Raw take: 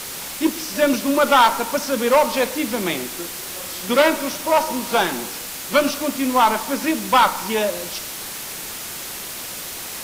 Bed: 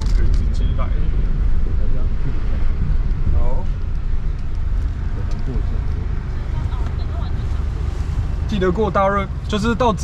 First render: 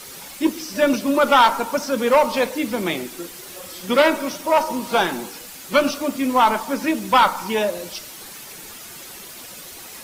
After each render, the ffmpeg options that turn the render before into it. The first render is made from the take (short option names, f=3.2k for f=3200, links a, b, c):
-af "afftdn=nr=9:nf=-32"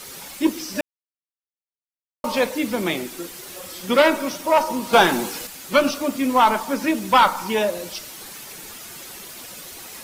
-filter_complex "[0:a]asettb=1/sr,asplit=3[a][b][c];[a]atrim=end=4.934[d];[b]atrim=start=4.93:end=5.47,asetpts=PTS-STARTPTS,afade=t=in:d=0.004:c=qsin,afade=t=out:st=0.536:d=0.004:c=qsin,acontrast=34[e];[c]atrim=start=5.466[f];[d][e]acrossfade=d=0.004:c1=hsin:c2=qsin[g];[g][f]acrossfade=d=0.004:c1=qsin:c2=hsin,asplit=3[h][i][j];[h]atrim=end=0.81,asetpts=PTS-STARTPTS,afade=t=out:st=0.806:d=0.004:c=hsin[k];[i]atrim=start=0.81:end=2.24,asetpts=PTS-STARTPTS,volume=0[l];[j]atrim=start=2.24,asetpts=PTS-STARTPTS,afade=t=in:d=0.004:c=hsin[m];[k][l][m]concat=n=3:v=0:a=1"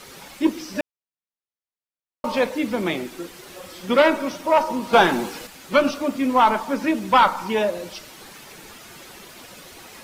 -af "highshelf=f=5.5k:g=-11.5"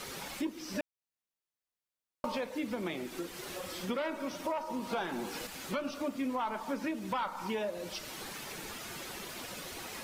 -af "alimiter=limit=-13.5dB:level=0:latency=1:release=300,acompressor=threshold=-38dB:ratio=2.5"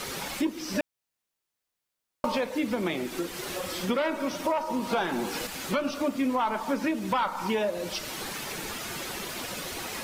-af "volume=7.5dB"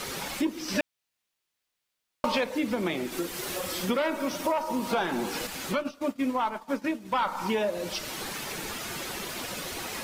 -filter_complex "[0:a]asettb=1/sr,asplit=3[a][b][c];[a]atrim=end=0.684[d];[b]atrim=start=0.68:end=2.44,asetpts=PTS-STARTPTS,afade=t=in:d=0.004:c=qsin,afade=t=out:st=1.756:d=0.004:c=qsin,equalizer=f=3k:t=o:w=2:g=5.5[e];[c]atrim=start=2.436[f];[d][e]acrossfade=d=0.004:c1=hsin:c2=qsin[g];[g][f]acrossfade=d=0.004:c1=qsin:c2=hsin,asettb=1/sr,asplit=3[h][i][j];[h]atrim=end=3.124[k];[i]atrim=start=3.12:end=4.92,asetpts=PTS-STARTPTS,afade=t=in:d=0.004:c=qsin,afade=t=out:st=1.796:d=0.004:c=qsin,highshelf=f=8.4k:g=6[l];[j]atrim=start=4.916[m];[k][l]acrossfade=d=0.004:c1=hsin:c2=qsin[n];[n][m]acrossfade=d=0.004:c1=qsin:c2=hsin,asplit=3[o][p][q];[o]afade=t=out:st=5.72:d=0.02[r];[p]agate=range=-33dB:threshold=-25dB:ratio=3:release=100:detection=peak,afade=t=in:st=5.72:d=0.02,afade=t=out:st=7.14:d=0.02[s];[q]afade=t=in:st=7.14:d=0.02[t];[r][s][t]amix=inputs=3:normalize=0"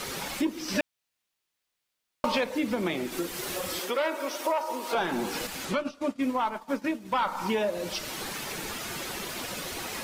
-filter_complex "[0:a]asettb=1/sr,asplit=3[a][b][c];[a]atrim=end=3.794[d];[b]atrim=start=3.79:end=4.95,asetpts=PTS-STARTPTS,afade=t=in:d=0.004:c=qsin,afade=t=out:st=1.156:d=0.004:c=qsin,highpass=f=340:w=0.5412,highpass=f=340:w=1.3066[e];[c]atrim=start=4.946[f];[d][e]acrossfade=d=0.004:c1=hsin:c2=qsin[g];[g][f]acrossfade=d=0.004:c1=qsin:c2=hsin,asettb=1/sr,asplit=3[h][i][j];[h]atrim=end=5.654[k];[i]atrim=start=5.65:end=6.22,asetpts=PTS-STARTPTS,afade=t=in:d=0.004:c=qsin,afade=t=out:st=0.566:d=0.004:c=qsin,lowpass=10k[l];[j]atrim=start=6.216[m];[k][l]acrossfade=d=0.004:c1=hsin:c2=qsin[n];[n][m]acrossfade=d=0.004:c1=qsin:c2=hsin"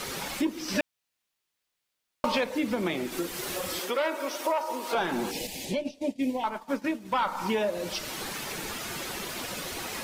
-filter_complex "[0:a]asettb=1/sr,asplit=3[a][b][c];[a]atrim=end=5.314[d];[b]atrim=start=5.31:end=6.44,asetpts=PTS-STARTPTS,afade=t=in:d=0.004:c=qsin,afade=t=out:st=1.126:d=0.004:c=qsin,asuperstop=centerf=1300:order=4:qfactor=0.94[e];[c]atrim=start=6.436[f];[d][e]acrossfade=d=0.004:c1=hsin:c2=qsin[g];[g][f]acrossfade=d=0.004:c1=qsin:c2=hsin"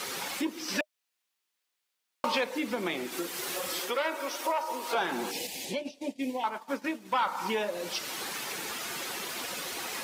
-af "highpass=f=400:p=1,bandreject=f=610:w=15"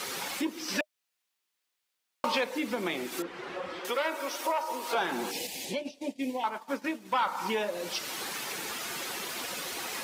-filter_complex "[0:a]asettb=1/sr,asplit=3[a][b][c];[a]atrim=end=3.224[d];[b]atrim=start=3.22:end=3.85,asetpts=PTS-STARTPTS,afade=t=in:d=0.004:c=qsin,afade=t=out:st=0.626:d=0.004:c=qsin,lowpass=2k[e];[c]atrim=start=3.846[f];[d][e]acrossfade=d=0.004:c1=hsin:c2=qsin[g];[g][f]acrossfade=d=0.004:c1=qsin:c2=hsin"